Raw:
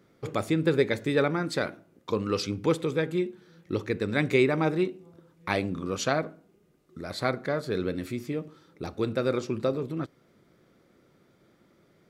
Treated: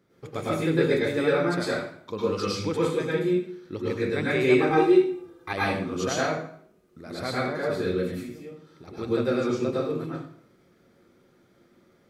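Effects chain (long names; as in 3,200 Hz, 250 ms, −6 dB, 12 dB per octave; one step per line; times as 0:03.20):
0:04.59–0:05.53: comb filter 2.5 ms, depth 99%
0:08.04–0:08.88: downward compressor 5 to 1, threshold −40 dBFS, peak gain reduction 12 dB
dense smooth reverb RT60 0.57 s, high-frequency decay 0.9×, pre-delay 90 ms, DRR −7 dB
level −6 dB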